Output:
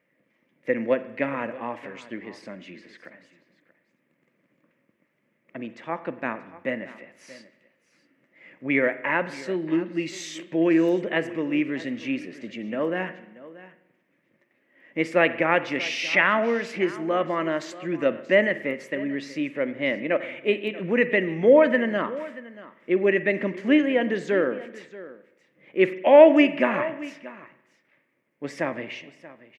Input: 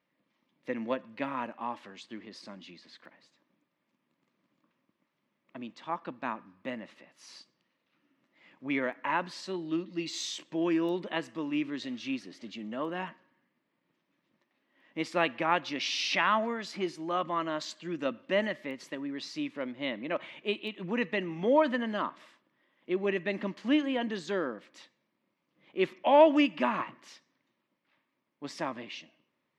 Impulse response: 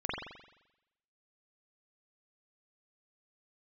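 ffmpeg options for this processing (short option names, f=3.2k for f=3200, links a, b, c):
-filter_complex "[0:a]equalizer=f=125:t=o:w=1:g=5,equalizer=f=500:t=o:w=1:g=9,equalizer=f=1k:t=o:w=1:g=-7,equalizer=f=2k:t=o:w=1:g=11,equalizer=f=4k:t=o:w=1:g=-10,aecho=1:1:632:0.126,asplit=2[a][b];[1:a]atrim=start_sample=2205[c];[b][c]afir=irnorm=-1:irlink=0,volume=-18.5dB[d];[a][d]amix=inputs=2:normalize=0,volume=3dB"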